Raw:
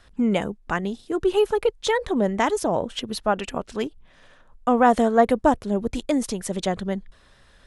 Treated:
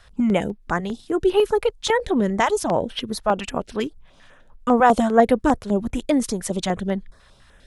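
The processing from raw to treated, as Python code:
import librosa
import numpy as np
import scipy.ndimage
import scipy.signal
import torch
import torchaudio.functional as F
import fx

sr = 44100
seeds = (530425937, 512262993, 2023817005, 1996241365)

y = fx.filter_held_notch(x, sr, hz=10.0, low_hz=290.0, high_hz=7100.0)
y = y * librosa.db_to_amplitude(3.0)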